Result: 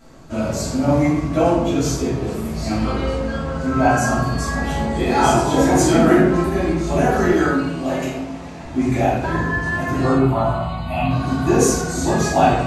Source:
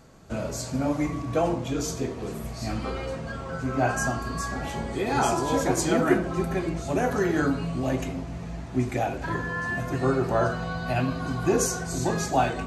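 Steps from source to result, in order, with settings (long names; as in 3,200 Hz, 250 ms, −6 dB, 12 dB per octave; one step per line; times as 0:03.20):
0:07.30–0:08.64: high-pass filter 370 Hz 6 dB per octave
0:10.12–0:11.11: phaser with its sweep stopped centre 1,600 Hz, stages 6
convolution reverb RT60 0.80 s, pre-delay 3 ms, DRR −9 dB
level −1.5 dB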